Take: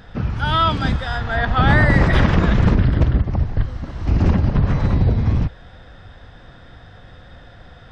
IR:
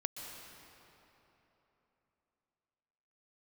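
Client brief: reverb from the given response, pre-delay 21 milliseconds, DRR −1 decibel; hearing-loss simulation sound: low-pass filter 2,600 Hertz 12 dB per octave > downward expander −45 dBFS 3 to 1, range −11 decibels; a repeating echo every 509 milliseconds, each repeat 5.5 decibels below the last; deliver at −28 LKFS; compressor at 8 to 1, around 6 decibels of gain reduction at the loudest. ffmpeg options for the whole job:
-filter_complex "[0:a]acompressor=threshold=-16dB:ratio=8,aecho=1:1:509|1018|1527|2036|2545|3054|3563:0.531|0.281|0.149|0.079|0.0419|0.0222|0.0118,asplit=2[link_01][link_02];[1:a]atrim=start_sample=2205,adelay=21[link_03];[link_02][link_03]afir=irnorm=-1:irlink=0,volume=0.5dB[link_04];[link_01][link_04]amix=inputs=2:normalize=0,lowpass=2600,agate=range=-11dB:threshold=-45dB:ratio=3,volume=-9.5dB"

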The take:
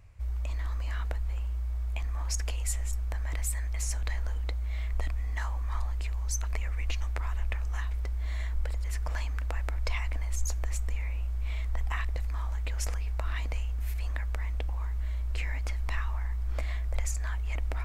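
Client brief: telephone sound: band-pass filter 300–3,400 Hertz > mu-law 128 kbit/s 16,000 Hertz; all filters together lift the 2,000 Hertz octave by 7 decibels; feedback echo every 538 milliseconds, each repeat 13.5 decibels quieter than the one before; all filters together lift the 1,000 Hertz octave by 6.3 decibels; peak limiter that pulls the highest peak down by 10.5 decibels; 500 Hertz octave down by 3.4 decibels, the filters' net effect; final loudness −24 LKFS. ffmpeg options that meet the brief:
ffmpeg -i in.wav -af "equalizer=frequency=500:width_type=o:gain=-7.5,equalizer=frequency=1000:width_type=o:gain=7.5,equalizer=frequency=2000:width_type=o:gain=7,alimiter=limit=-22.5dB:level=0:latency=1,highpass=300,lowpass=3400,aecho=1:1:538|1076:0.211|0.0444,volume=17dB" -ar 16000 -c:a pcm_mulaw out.wav

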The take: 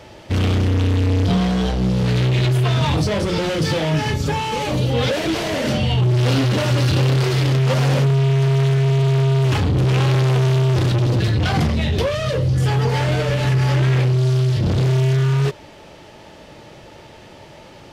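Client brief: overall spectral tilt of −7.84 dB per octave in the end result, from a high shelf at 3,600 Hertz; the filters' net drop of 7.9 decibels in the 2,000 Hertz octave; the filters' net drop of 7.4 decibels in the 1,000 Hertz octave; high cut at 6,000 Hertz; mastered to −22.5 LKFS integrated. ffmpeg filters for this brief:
ffmpeg -i in.wav -af "lowpass=6000,equalizer=frequency=1000:width_type=o:gain=-8,equalizer=frequency=2000:width_type=o:gain=-5.5,highshelf=frequency=3600:gain=-7.5,volume=-4dB" out.wav

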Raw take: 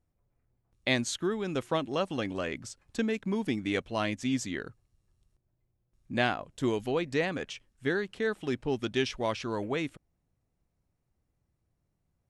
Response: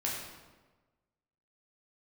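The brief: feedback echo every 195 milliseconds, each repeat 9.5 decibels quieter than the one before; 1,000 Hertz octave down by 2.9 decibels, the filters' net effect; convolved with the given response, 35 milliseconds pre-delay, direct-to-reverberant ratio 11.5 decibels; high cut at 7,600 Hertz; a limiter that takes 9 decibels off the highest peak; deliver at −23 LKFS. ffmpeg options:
-filter_complex "[0:a]lowpass=7600,equalizer=frequency=1000:width_type=o:gain=-4,alimiter=limit=-21.5dB:level=0:latency=1,aecho=1:1:195|390|585|780:0.335|0.111|0.0365|0.012,asplit=2[link_01][link_02];[1:a]atrim=start_sample=2205,adelay=35[link_03];[link_02][link_03]afir=irnorm=-1:irlink=0,volume=-16.5dB[link_04];[link_01][link_04]amix=inputs=2:normalize=0,volume=10.5dB"

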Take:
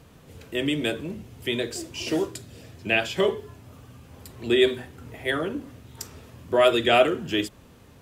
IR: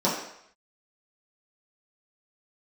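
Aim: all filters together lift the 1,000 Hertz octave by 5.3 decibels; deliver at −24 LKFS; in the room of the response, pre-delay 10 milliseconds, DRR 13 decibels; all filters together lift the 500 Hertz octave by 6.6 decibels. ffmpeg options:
-filter_complex "[0:a]equalizer=frequency=500:width_type=o:gain=8,equalizer=frequency=1000:width_type=o:gain=4,asplit=2[link_01][link_02];[1:a]atrim=start_sample=2205,adelay=10[link_03];[link_02][link_03]afir=irnorm=-1:irlink=0,volume=-27.5dB[link_04];[link_01][link_04]amix=inputs=2:normalize=0,volume=-4.5dB"

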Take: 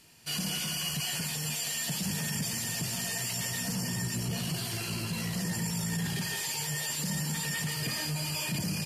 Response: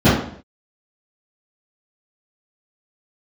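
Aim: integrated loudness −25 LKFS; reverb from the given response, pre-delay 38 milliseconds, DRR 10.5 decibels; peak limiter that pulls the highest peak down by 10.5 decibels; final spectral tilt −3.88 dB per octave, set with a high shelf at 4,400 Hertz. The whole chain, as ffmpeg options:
-filter_complex "[0:a]highshelf=frequency=4400:gain=-6,alimiter=level_in=10.5dB:limit=-24dB:level=0:latency=1,volume=-10.5dB,asplit=2[link_01][link_02];[1:a]atrim=start_sample=2205,adelay=38[link_03];[link_02][link_03]afir=irnorm=-1:irlink=0,volume=-36dB[link_04];[link_01][link_04]amix=inputs=2:normalize=0,volume=15dB"

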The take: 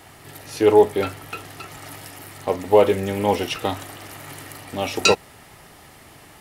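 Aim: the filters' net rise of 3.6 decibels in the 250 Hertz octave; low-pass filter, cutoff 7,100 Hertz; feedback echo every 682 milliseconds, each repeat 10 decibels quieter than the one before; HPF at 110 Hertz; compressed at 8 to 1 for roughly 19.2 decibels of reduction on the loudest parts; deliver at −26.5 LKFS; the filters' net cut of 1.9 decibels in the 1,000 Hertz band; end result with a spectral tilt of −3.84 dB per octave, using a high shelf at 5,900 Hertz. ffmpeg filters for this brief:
ffmpeg -i in.wav -af "highpass=110,lowpass=7100,equalizer=frequency=250:width_type=o:gain=5.5,equalizer=frequency=1000:width_type=o:gain=-3,highshelf=frequency=5900:gain=6.5,acompressor=threshold=-28dB:ratio=8,aecho=1:1:682|1364|2046|2728:0.316|0.101|0.0324|0.0104,volume=7.5dB" out.wav

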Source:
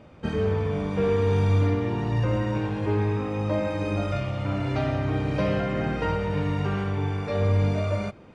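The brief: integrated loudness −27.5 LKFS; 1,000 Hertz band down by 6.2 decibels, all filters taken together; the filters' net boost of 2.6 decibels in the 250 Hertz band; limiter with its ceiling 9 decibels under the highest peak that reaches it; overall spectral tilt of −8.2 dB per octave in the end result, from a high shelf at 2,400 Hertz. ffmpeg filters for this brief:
ffmpeg -i in.wav -af "equalizer=frequency=250:width_type=o:gain=4,equalizer=frequency=1000:width_type=o:gain=-7,highshelf=frequency=2400:gain=-7.5,volume=2dB,alimiter=limit=-19.5dB:level=0:latency=1" out.wav

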